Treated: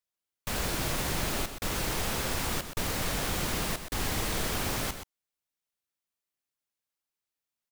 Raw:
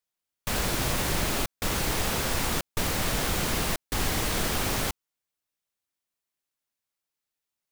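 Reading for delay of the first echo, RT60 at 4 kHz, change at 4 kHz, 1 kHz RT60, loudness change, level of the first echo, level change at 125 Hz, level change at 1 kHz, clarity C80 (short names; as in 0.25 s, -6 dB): 0.125 s, none, -3.5 dB, none, -3.5 dB, -9.5 dB, -3.5 dB, -3.5 dB, none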